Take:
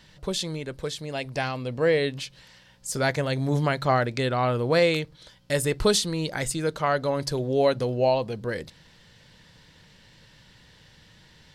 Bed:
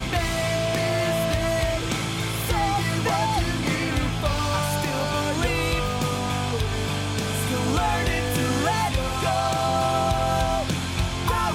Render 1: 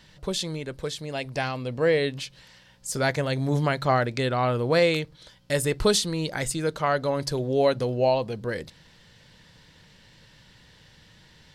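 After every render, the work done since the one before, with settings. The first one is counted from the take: no audible change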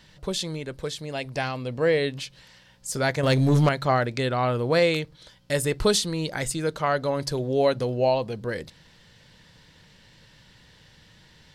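3.23–3.69 s: waveshaping leveller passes 2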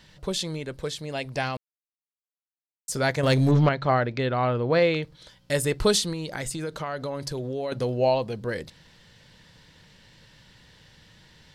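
1.57–2.88 s: mute; 3.51–5.03 s: Gaussian low-pass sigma 1.8 samples; 6.12–7.72 s: compression, threshold -27 dBFS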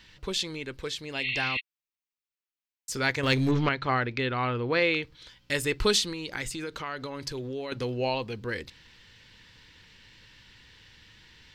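1.25–1.57 s: spectral replace 1.9–4.4 kHz before; fifteen-band graphic EQ 160 Hz -10 dB, 630 Hz -11 dB, 2.5 kHz +5 dB, 10 kHz -8 dB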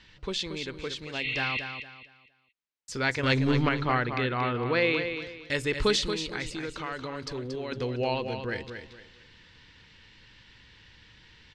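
distance through air 76 m; feedback delay 230 ms, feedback 30%, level -8 dB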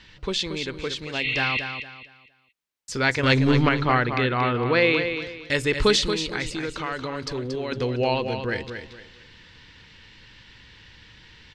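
trim +5.5 dB

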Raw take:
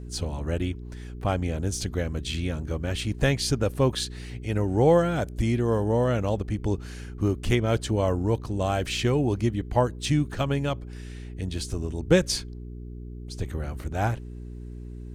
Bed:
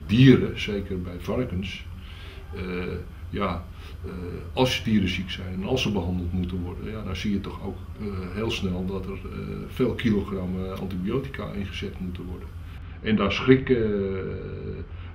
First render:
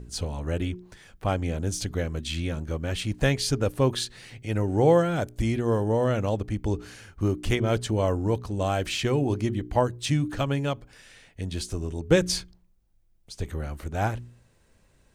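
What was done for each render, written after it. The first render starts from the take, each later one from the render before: de-hum 60 Hz, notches 7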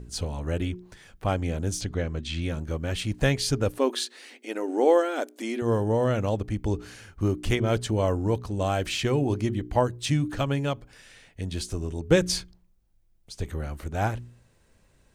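1.81–2.42 s: distance through air 71 m; 3.78–5.62 s: brick-wall FIR high-pass 230 Hz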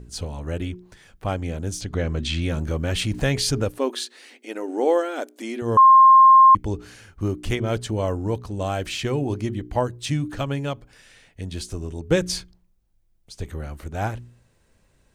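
1.93–3.65 s: level flattener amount 50%; 5.77–6.55 s: bleep 1.06 kHz -7.5 dBFS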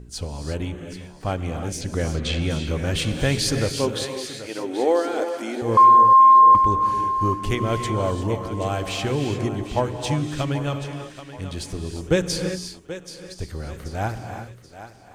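thinning echo 781 ms, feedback 40%, high-pass 260 Hz, level -12 dB; gated-style reverb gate 380 ms rising, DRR 6 dB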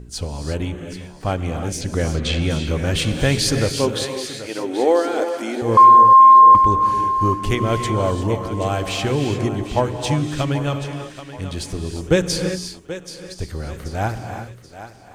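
trim +3.5 dB

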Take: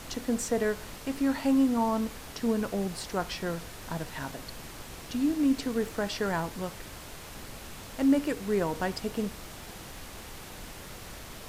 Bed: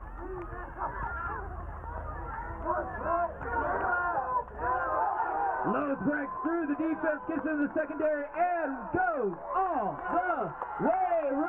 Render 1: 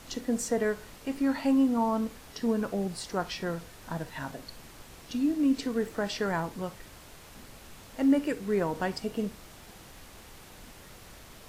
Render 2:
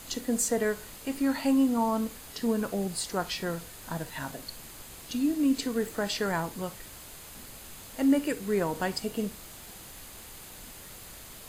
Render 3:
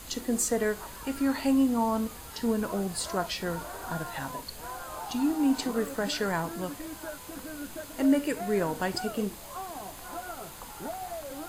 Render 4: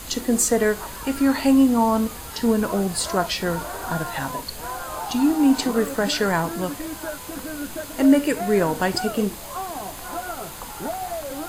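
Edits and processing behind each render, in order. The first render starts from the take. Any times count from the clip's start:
noise print and reduce 6 dB
treble shelf 4.8 kHz +11 dB; band-stop 5.6 kHz, Q 8.4
add bed -10.5 dB
trim +8 dB

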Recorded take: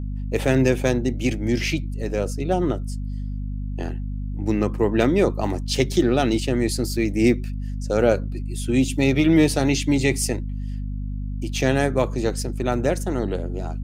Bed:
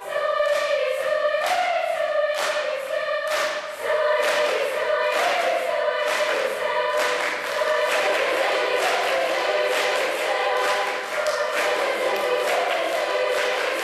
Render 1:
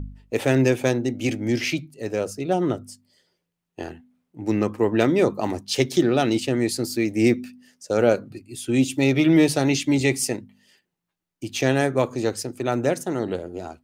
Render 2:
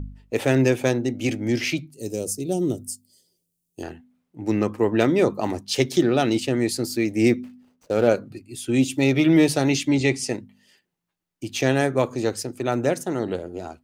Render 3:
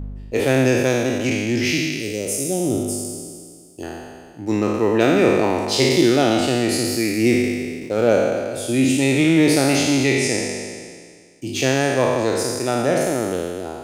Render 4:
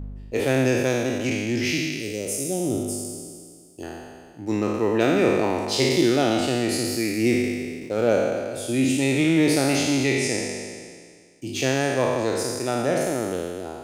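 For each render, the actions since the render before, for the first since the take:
de-hum 50 Hz, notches 5
1.94–3.83 s: FFT filter 360 Hz 0 dB, 1.6 kHz -21 dB, 2.6 kHz -8 dB, 9.1 kHz +13 dB; 7.43–8.08 s: median filter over 25 samples; 9.88–10.29 s: low-pass 6.6 kHz
spectral sustain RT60 1.93 s
trim -4 dB

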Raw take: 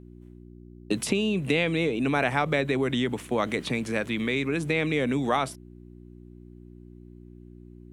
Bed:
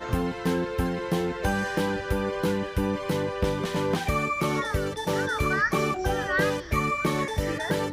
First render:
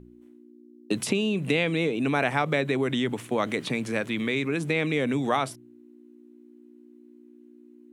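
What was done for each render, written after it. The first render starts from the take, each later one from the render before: de-hum 60 Hz, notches 3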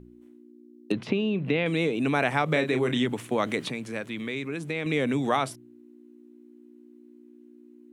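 0.92–1.66 s: distance through air 270 m; 2.45–3.06 s: doubling 32 ms -7.5 dB; 3.70–4.86 s: gain -5.5 dB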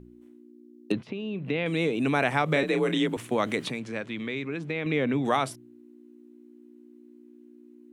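1.02–1.90 s: fade in, from -12.5 dB; 2.63–3.17 s: frequency shift +38 Hz; 3.79–5.24 s: low-pass 6.4 kHz -> 2.9 kHz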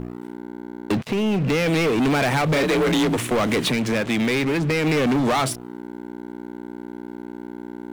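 compression 1.5:1, threshold -36 dBFS, peak gain reduction 6.5 dB; waveshaping leveller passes 5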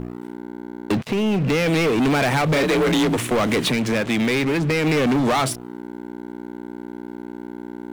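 trim +1 dB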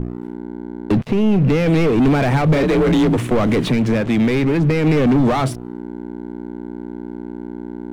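tilt EQ -2.5 dB/octave

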